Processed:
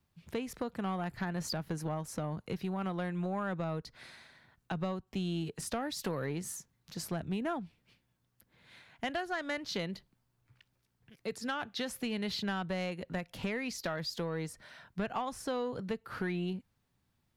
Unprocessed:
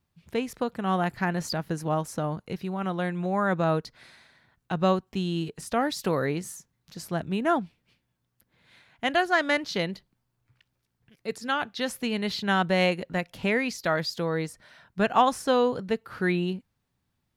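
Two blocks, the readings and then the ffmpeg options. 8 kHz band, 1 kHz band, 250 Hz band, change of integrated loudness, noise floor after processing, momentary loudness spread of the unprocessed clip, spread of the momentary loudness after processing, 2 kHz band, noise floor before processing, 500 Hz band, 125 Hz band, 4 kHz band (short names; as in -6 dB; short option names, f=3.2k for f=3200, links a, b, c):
-3.5 dB, -12.0 dB, -8.0 dB, -10.0 dB, -78 dBFS, 11 LU, 8 LU, -11.0 dB, -78 dBFS, -10.5 dB, -7.0 dB, -7.5 dB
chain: -filter_complex "[0:a]acrossover=split=110[a][b];[b]acompressor=threshold=-32dB:ratio=6[c];[a][c]amix=inputs=2:normalize=0,asoftclip=type=tanh:threshold=-25dB"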